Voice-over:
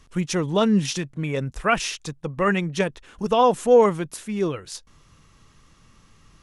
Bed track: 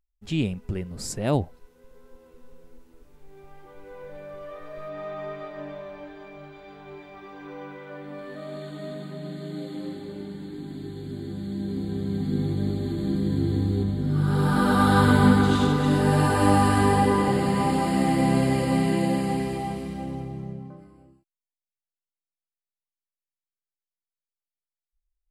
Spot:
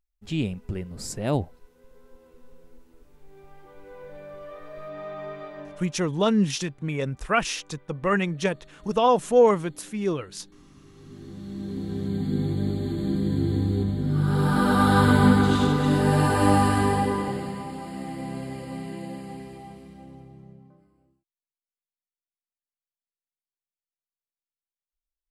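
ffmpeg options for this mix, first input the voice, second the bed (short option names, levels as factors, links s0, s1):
-filter_complex "[0:a]adelay=5650,volume=0.794[s0];[1:a]volume=6.68,afade=t=out:st=5.53:d=0.48:silence=0.149624,afade=t=in:st=10.84:d=1.26:silence=0.125893,afade=t=out:st=16.54:d=1.11:silence=0.237137[s1];[s0][s1]amix=inputs=2:normalize=0"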